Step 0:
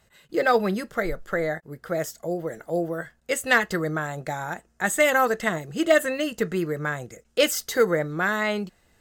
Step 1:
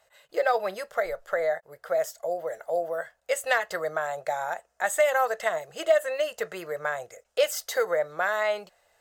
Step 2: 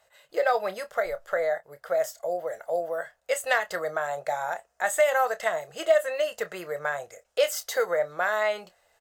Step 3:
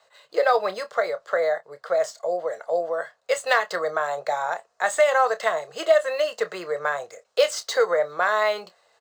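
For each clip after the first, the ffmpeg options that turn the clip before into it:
ffmpeg -i in.wav -af "lowshelf=frequency=400:width_type=q:width=3:gain=-14,acompressor=threshold=-20dB:ratio=2,volume=-2.5dB" out.wav
ffmpeg -i in.wav -filter_complex "[0:a]asplit=2[link_01][link_02];[link_02]adelay=28,volume=-12dB[link_03];[link_01][link_03]amix=inputs=2:normalize=0" out.wav
ffmpeg -i in.wav -filter_complex "[0:a]highpass=160,equalizer=frequency=440:width_type=q:width=4:gain=5,equalizer=frequency=1100:width_type=q:width=4:gain=8,equalizer=frequency=4200:width_type=q:width=4:gain=8,lowpass=frequency=8100:width=0.5412,lowpass=frequency=8100:width=1.3066,acrossover=split=240|1200|2900[link_01][link_02][link_03][link_04];[link_04]acrusher=bits=3:mode=log:mix=0:aa=0.000001[link_05];[link_01][link_02][link_03][link_05]amix=inputs=4:normalize=0,volume=2dB" out.wav

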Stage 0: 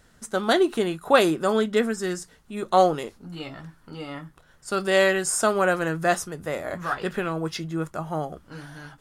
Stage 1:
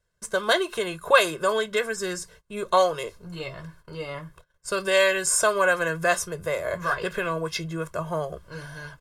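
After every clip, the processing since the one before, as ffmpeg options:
ffmpeg -i in.wav -filter_complex "[0:a]agate=range=-22dB:threshold=-52dB:ratio=16:detection=peak,aecho=1:1:1.9:0.95,acrossover=split=670[link_01][link_02];[link_01]acompressor=threshold=-28dB:ratio=6[link_03];[link_03][link_02]amix=inputs=2:normalize=0" out.wav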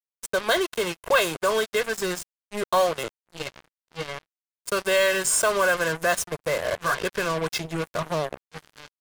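ffmpeg -i in.wav -filter_complex "[0:a]asplit=2[link_01][link_02];[link_02]alimiter=limit=-14dB:level=0:latency=1:release=93,volume=-1.5dB[link_03];[link_01][link_03]amix=inputs=2:normalize=0,acrusher=bits=3:mix=0:aa=0.5,asoftclip=type=tanh:threshold=-8dB,volume=-3.5dB" out.wav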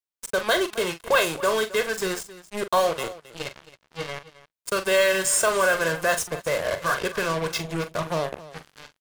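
ffmpeg -i in.wav -af "aecho=1:1:42|268:0.299|0.141" out.wav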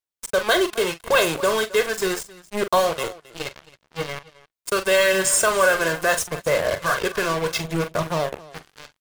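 ffmpeg -i in.wav -filter_complex "[0:a]aphaser=in_gain=1:out_gain=1:delay=2.9:decay=0.26:speed=0.76:type=sinusoidal,asplit=2[link_01][link_02];[link_02]acrusher=bits=4:mix=0:aa=0.000001,volume=-9.5dB[link_03];[link_01][link_03]amix=inputs=2:normalize=0" out.wav

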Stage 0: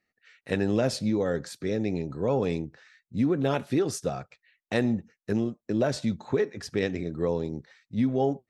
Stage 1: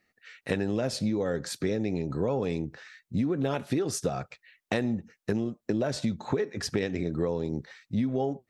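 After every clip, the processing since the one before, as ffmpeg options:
ffmpeg -i in.wav -af "acompressor=threshold=-32dB:ratio=6,volume=7dB" out.wav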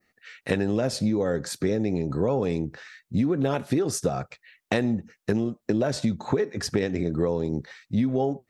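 ffmpeg -i in.wav -af "adynamicequalizer=threshold=0.00316:dfrequency=3000:dqfactor=0.99:tfrequency=3000:tqfactor=0.99:attack=5:release=100:ratio=0.375:range=2.5:mode=cutabove:tftype=bell,volume=4dB" out.wav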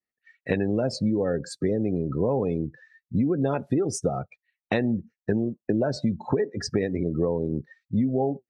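ffmpeg -i in.wav -af "afftdn=noise_reduction=25:noise_floor=-33" out.wav

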